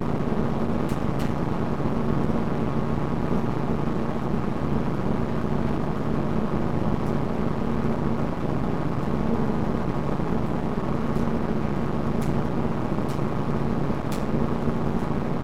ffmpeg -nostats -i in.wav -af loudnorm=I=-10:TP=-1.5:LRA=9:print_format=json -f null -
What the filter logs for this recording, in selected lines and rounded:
"input_i" : "-26.5",
"input_tp" : "-8.5",
"input_lra" : "0.5",
"input_thresh" : "-36.5",